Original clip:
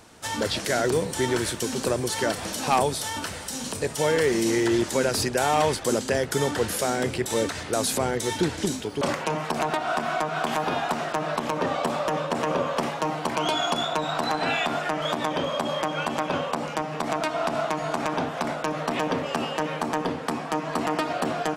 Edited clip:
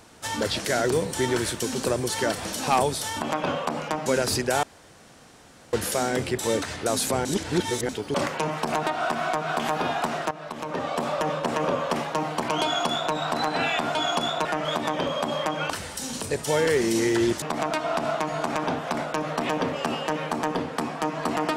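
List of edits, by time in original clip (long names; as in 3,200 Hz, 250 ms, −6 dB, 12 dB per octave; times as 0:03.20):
0:03.21–0:04.93: swap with 0:16.07–0:16.92
0:05.50–0:06.60: fill with room tone
0:08.12–0:08.76: reverse
0:11.18–0:12.01: fade in, from −13.5 dB
0:13.50–0:14.00: duplicate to 0:14.82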